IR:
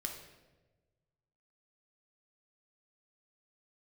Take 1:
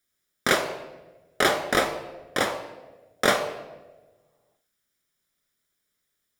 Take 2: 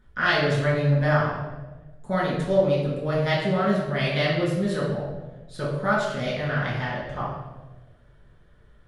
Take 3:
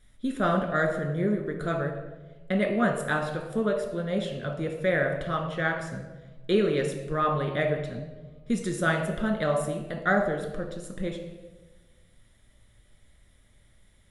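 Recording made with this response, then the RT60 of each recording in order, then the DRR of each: 3; 1.2, 1.2, 1.2 seconds; 5.5, −8.0, 1.5 decibels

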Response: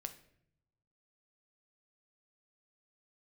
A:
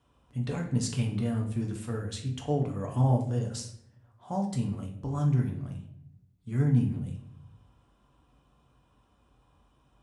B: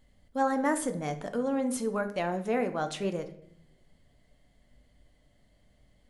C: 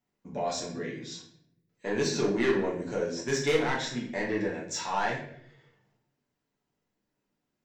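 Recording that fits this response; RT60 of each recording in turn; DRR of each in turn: B; 0.65, 0.70, 0.65 seconds; 0.5, 7.5, −4.0 decibels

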